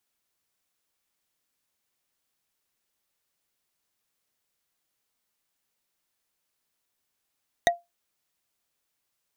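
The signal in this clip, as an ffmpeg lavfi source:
ffmpeg -f lavfi -i "aevalsrc='0.211*pow(10,-3*t/0.19)*sin(2*PI*692*t)+0.168*pow(10,-3*t/0.056)*sin(2*PI*1907.8*t)+0.133*pow(10,-3*t/0.025)*sin(2*PI*3739.6*t)+0.106*pow(10,-3*t/0.014)*sin(2*PI*6181.6*t)+0.0841*pow(10,-3*t/0.008)*sin(2*PI*9231.3*t)':duration=0.45:sample_rate=44100" out.wav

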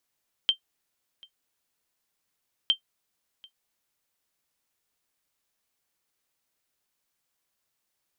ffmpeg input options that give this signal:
ffmpeg -f lavfi -i "aevalsrc='0.237*(sin(2*PI*3140*mod(t,2.21))*exp(-6.91*mod(t,2.21)/0.1)+0.0473*sin(2*PI*3140*max(mod(t,2.21)-0.74,0))*exp(-6.91*max(mod(t,2.21)-0.74,0)/0.1))':duration=4.42:sample_rate=44100" out.wav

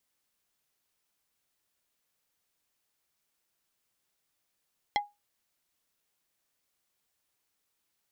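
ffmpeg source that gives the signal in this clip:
ffmpeg -f lavfi -i "aevalsrc='0.0891*pow(10,-3*t/0.21)*sin(2*PI*823*t)+0.0631*pow(10,-3*t/0.07)*sin(2*PI*2057.5*t)+0.0447*pow(10,-3*t/0.04)*sin(2*PI*3292*t)+0.0316*pow(10,-3*t/0.03)*sin(2*PI*4115*t)+0.0224*pow(10,-3*t/0.022)*sin(2*PI*5349.5*t)':duration=0.45:sample_rate=44100" out.wav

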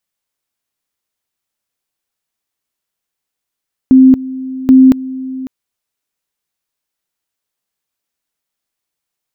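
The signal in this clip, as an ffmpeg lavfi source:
ffmpeg -f lavfi -i "aevalsrc='pow(10,(-1.5-18*gte(mod(t,0.78),0.23))/20)*sin(2*PI*261*t)':duration=1.56:sample_rate=44100" out.wav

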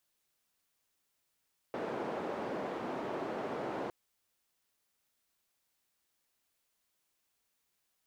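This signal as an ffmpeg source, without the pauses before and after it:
ffmpeg -f lavfi -i "anoisesrc=color=white:duration=2.16:sample_rate=44100:seed=1,highpass=frequency=250,lowpass=frequency=630,volume=-16.2dB" out.wav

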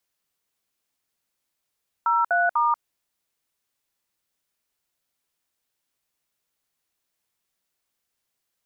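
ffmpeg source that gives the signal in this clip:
ffmpeg -f lavfi -i "aevalsrc='0.0944*clip(min(mod(t,0.247),0.187-mod(t,0.247))/0.002,0,1)*(eq(floor(t/0.247),0)*(sin(2*PI*941*mod(t,0.247))+sin(2*PI*1336*mod(t,0.247)))+eq(floor(t/0.247),1)*(sin(2*PI*697*mod(t,0.247))+sin(2*PI*1477*mod(t,0.247)))+eq(floor(t/0.247),2)*(sin(2*PI*941*mod(t,0.247))+sin(2*PI*1209*mod(t,0.247))))':duration=0.741:sample_rate=44100" out.wav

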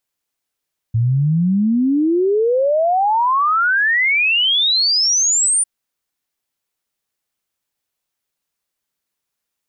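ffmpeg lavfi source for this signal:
ffmpeg -f lavfi -i "aevalsrc='0.237*clip(min(t,4.7-t)/0.01,0,1)*sin(2*PI*110*4.7/log(9400/110)*(exp(log(9400/110)*t/4.7)-1))':duration=4.7:sample_rate=44100" out.wav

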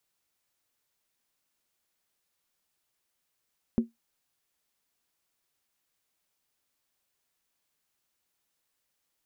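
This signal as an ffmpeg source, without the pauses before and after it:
ffmpeg -f lavfi -i "aevalsrc='0.15*pow(10,-3*t/0.16)*sin(2*PI*231*t)+0.0398*pow(10,-3*t/0.127)*sin(2*PI*368.2*t)+0.0106*pow(10,-3*t/0.109)*sin(2*PI*493.4*t)+0.00282*pow(10,-3*t/0.106)*sin(2*PI*530.4*t)+0.00075*pow(10,-3*t/0.098)*sin(2*PI*612.8*t)':duration=0.63:sample_rate=44100" out.wav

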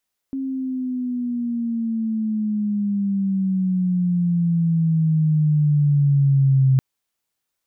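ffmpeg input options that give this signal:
ffmpeg -f lavfi -i "aevalsrc='pow(10,(-12+11*(t/6.46-1))/20)*sin(2*PI*270*6.46/(-12.5*log(2)/12)*(exp(-12.5*log(2)/12*t/6.46)-1))':duration=6.46:sample_rate=44100" out.wav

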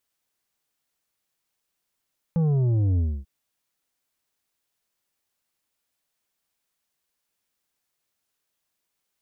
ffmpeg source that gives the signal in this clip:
ffmpeg -f lavfi -i "aevalsrc='0.106*clip((0.89-t)/0.27,0,1)*tanh(2.37*sin(2*PI*170*0.89/log(65/170)*(exp(log(65/170)*t/0.89)-1)))/tanh(2.37)':duration=0.89:sample_rate=44100" out.wav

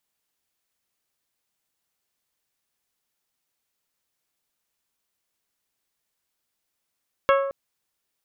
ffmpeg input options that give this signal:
ffmpeg -f lavfi -i "aevalsrc='0.178*pow(10,-3*t/0.96)*sin(2*PI*550*t)+0.126*pow(10,-3*t/0.591)*sin(2*PI*1100*t)+0.0891*pow(10,-3*t/0.52)*sin(2*PI*1320*t)+0.0631*pow(10,-3*t/0.445)*sin(2*PI*1650*t)+0.0447*pow(10,-3*t/0.364)*sin(2*PI*2200*t)+0.0316*pow(10,-3*t/0.311)*sin(2*PI*2750*t)+0.0224*pow(10,-3*t/0.274)*sin(2*PI*3300*t)':duration=0.22:sample_rate=44100" out.wav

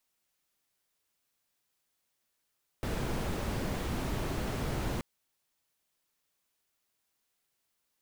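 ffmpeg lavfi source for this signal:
ffmpeg -f lavfi -i "anoisesrc=color=brown:amplitude=0.105:duration=2.18:sample_rate=44100:seed=1" out.wav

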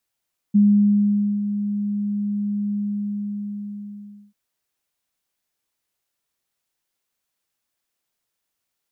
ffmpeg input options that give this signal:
ffmpeg -f lavfi -i "aevalsrc='0.299*sin(2*PI*205*t)':duration=3.79:sample_rate=44100,afade=type=in:duration=0.017,afade=type=out:start_time=0.017:duration=0.851:silence=0.299,afade=type=out:start_time=2.19:duration=1.6" out.wav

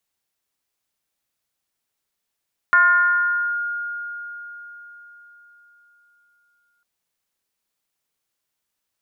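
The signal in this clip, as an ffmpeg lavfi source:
ffmpeg -f lavfi -i "aevalsrc='0.316*pow(10,-3*t/4.37)*sin(2*PI*1420*t+0.69*clip(1-t/0.87,0,1)*sin(2*PI*0.26*1420*t))':duration=4.1:sample_rate=44100" out.wav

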